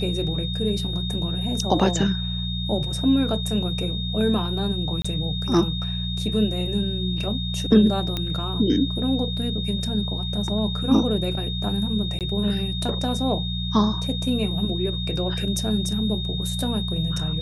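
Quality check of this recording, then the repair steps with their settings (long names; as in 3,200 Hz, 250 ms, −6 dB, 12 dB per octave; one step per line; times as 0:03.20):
mains hum 60 Hz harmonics 3 −28 dBFS
whistle 3,700 Hz −30 dBFS
0:05.02–0:05.04: drop-out 25 ms
0:08.17: click −12 dBFS
0:12.19–0:12.21: drop-out 18 ms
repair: click removal
notch filter 3,700 Hz, Q 30
hum removal 60 Hz, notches 3
repair the gap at 0:05.02, 25 ms
repair the gap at 0:12.19, 18 ms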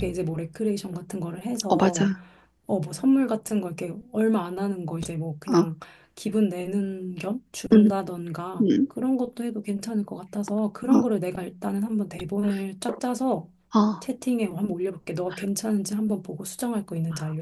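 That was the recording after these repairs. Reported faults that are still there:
none of them is left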